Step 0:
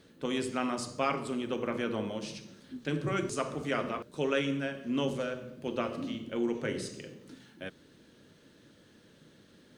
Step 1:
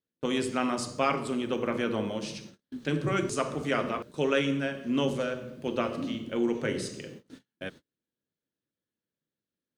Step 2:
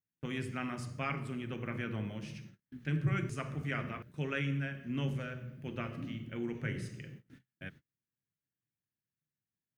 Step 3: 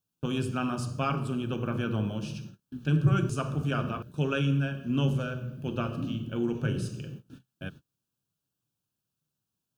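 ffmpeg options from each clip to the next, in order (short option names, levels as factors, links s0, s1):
-af "agate=range=0.0141:threshold=0.00355:ratio=16:detection=peak,volume=1.5"
-af "equalizer=f=125:t=o:w=1:g=9,equalizer=f=250:t=o:w=1:g=-5,equalizer=f=500:t=o:w=1:g=-10,equalizer=f=1000:t=o:w=1:g=-8,equalizer=f=2000:t=o:w=1:g=5,equalizer=f=4000:t=o:w=1:g=-11,equalizer=f=8000:t=o:w=1:g=-10,volume=0.631"
-af "asuperstop=centerf=2000:order=4:qfactor=1.9,volume=2.66"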